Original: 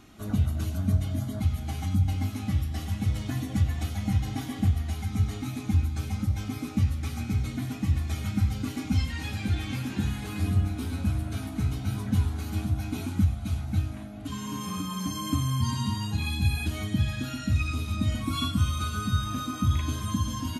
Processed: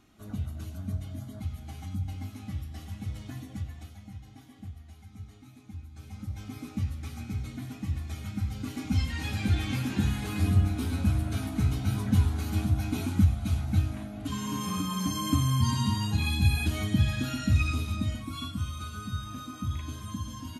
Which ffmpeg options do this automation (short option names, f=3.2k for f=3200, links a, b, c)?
-af "volume=11dB,afade=t=out:st=3.31:d=0.79:silence=0.334965,afade=t=in:st=5.87:d=0.72:silence=0.251189,afade=t=in:st=8.44:d=1.01:silence=0.398107,afade=t=out:st=17.66:d=0.6:silence=0.334965"